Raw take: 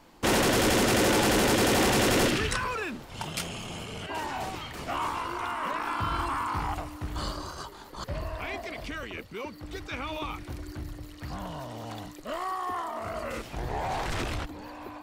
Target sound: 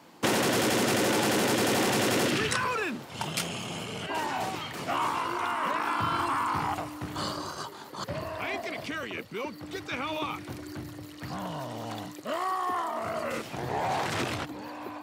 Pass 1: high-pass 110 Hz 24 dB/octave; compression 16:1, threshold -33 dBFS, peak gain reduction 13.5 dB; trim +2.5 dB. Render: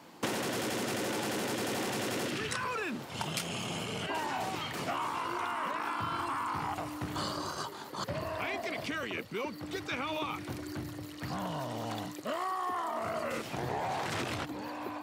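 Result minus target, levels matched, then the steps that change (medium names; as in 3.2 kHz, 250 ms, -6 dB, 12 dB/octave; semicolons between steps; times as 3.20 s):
compression: peak gain reduction +8.5 dB
change: compression 16:1, threshold -24 dBFS, peak gain reduction 5 dB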